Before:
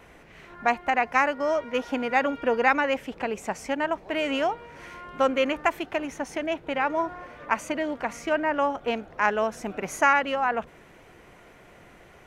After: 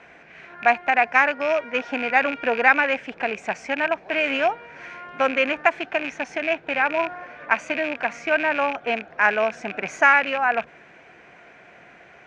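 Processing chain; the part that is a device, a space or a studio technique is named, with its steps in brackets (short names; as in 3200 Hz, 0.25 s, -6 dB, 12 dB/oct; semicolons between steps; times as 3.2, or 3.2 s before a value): car door speaker with a rattle (rattling part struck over -40 dBFS, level -23 dBFS; speaker cabinet 96–6600 Hz, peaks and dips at 100 Hz -8 dB, 700 Hz +7 dB, 1600 Hz +10 dB, 2400 Hz +9 dB); gain -1 dB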